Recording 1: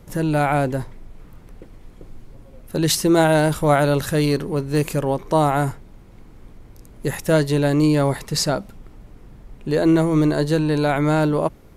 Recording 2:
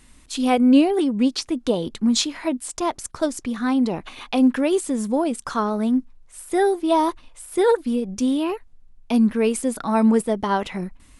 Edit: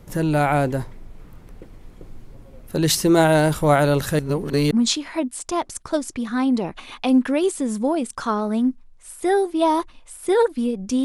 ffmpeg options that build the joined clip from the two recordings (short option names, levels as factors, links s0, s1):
-filter_complex "[0:a]apad=whole_dur=11.04,atrim=end=11.04,asplit=2[s0][s1];[s0]atrim=end=4.192[s2];[s1]atrim=start=4.188:end=4.712,asetpts=PTS-STARTPTS,areverse[s3];[1:a]atrim=start=1.998:end=8.33[s4];[s2][s3]acrossfade=d=0.004:c1=hsin:c2=hsin[s5];[s5][s4]acrossfade=d=0.004:c1=hsin:c2=hsin"